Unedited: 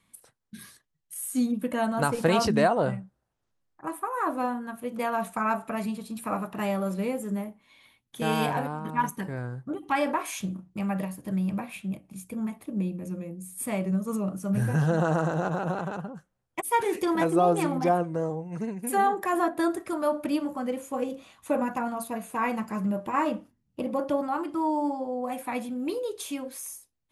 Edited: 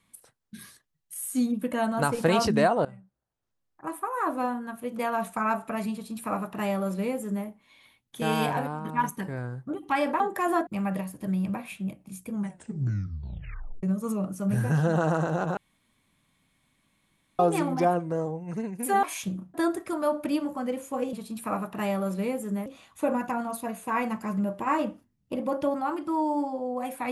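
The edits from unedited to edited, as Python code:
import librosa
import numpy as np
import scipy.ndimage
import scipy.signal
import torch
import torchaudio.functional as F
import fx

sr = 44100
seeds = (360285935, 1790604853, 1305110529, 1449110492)

y = fx.edit(x, sr, fx.fade_in_from(start_s=2.85, length_s=1.13, floor_db=-19.0),
    fx.duplicate(start_s=5.93, length_s=1.53, to_s=21.13),
    fx.swap(start_s=10.2, length_s=0.51, other_s=19.07, other_length_s=0.47),
    fx.tape_stop(start_s=12.34, length_s=1.53),
    fx.room_tone_fill(start_s=15.61, length_s=1.82), tone=tone)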